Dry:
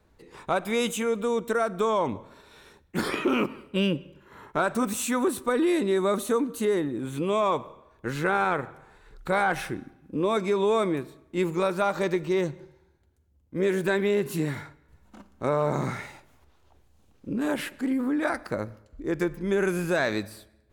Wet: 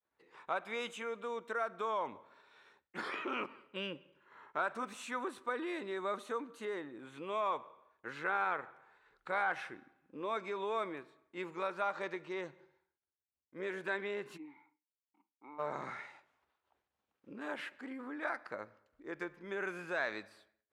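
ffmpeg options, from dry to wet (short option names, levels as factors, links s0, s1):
-filter_complex "[0:a]asplit=3[s0][s1][s2];[s0]afade=t=out:st=14.36:d=0.02[s3];[s1]asplit=3[s4][s5][s6];[s4]bandpass=f=300:t=q:w=8,volume=1[s7];[s5]bandpass=f=870:t=q:w=8,volume=0.501[s8];[s6]bandpass=f=2240:t=q:w=8,volume=0.355[s9];[s7][s8][s9]amix=inputs=3:normalize=0,afade=t=in:st=14.36:d=0.02,afade=t=out:st=15.58:d=0.02[s10];[s2]afade=t=in:st=15.58:d=0.02[s11];[s3][s10][s11]amix=inputs=3:normalize=0,lowpass=1500,agate=range=0.0224:threshold=0.00178:ratio=3:detection=peak,aderivative,volume=2.82"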